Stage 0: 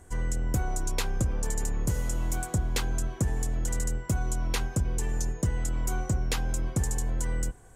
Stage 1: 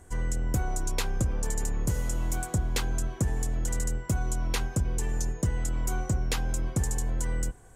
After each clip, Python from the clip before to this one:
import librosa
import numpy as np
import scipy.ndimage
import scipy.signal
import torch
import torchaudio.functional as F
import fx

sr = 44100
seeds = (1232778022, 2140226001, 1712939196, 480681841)

y = x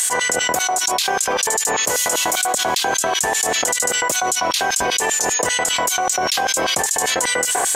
y = fx.notch(x, sr, hz=1400.0, q=13.0)
y = fx.filter_lfo_highpass(y, sr, shape='square', hz=5.1, low_hz=670.0, high_hz=3700.0, q=1.5)
y = fx.env_flatten(y, sr, amount_pct=100)
y = y * librosa.db_to_amplitude(8.5)